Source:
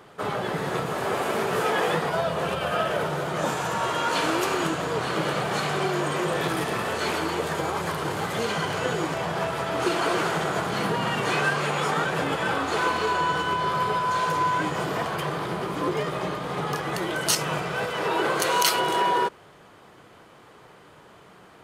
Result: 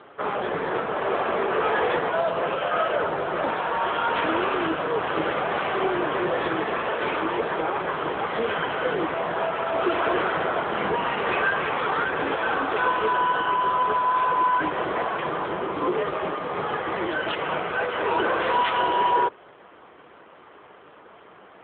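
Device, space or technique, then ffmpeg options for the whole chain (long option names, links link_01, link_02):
telephone: -filter_complex "[0:a]asettb=1/sr,asplit=3[link_01][link_02][link_03];[link_01]atrim=end=11.634[link_04];[link_02]atrim=start=11.63:end=12.27,asetpts=PTS-STARTPTS,afade=type=in:duration=0.004:curve=qsin,afade=type=out:start_time=0.636:duration=0.004:curve=qsin,equalizer=frequency=630:width_type=o:width=0.43:gain=-5[link_05];[link_03]atrim=start=12.266[link_06];[link_04][link_05]acrossfade=duration=0.004:curve1=hsin:curve2=qsin[link_07];[link_07][link_06]acrossfade=duration=0.004:curve1=qsin:curve2=hsin,highpass=270,lowpass=3100,asoftclip=type=tanh:threshold=-17.5dB,volume=4.5dB" -ar 8000 -c:a libopencore_amrnb -b:a 7950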